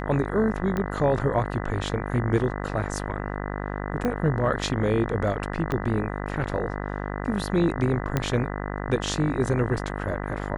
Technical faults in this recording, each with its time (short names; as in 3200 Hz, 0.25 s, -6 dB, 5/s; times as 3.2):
buzz 50 Hz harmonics 40 -31 dBFS
0.77 pop -16 dBFS
4.05 pop -15 dBFS
5.72 pop -15 dBFS
8.17 pop -10 dBFS